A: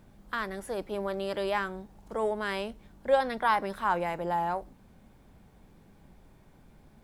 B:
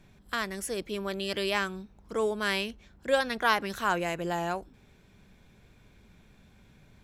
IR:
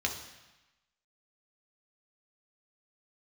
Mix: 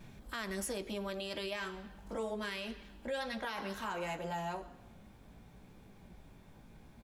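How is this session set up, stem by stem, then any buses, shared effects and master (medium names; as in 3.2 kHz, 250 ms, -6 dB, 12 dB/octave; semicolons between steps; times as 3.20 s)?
+2.5 dB, 0.00 s, no send, compression 3:1, threshold -40 dBFS, peak gain reduction 16 dB; chorus 0.69 Hz, delay 16 ms, depth 2.9 ms
+2.5 dB, 3.4 ms, send -21.5 dB, auto duck -15 dB, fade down 1.75 s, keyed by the first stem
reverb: on, RT60 1.0 s, pre-delay 3 ms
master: peak limiter -29 dBFS, peak gain reduction 10 dB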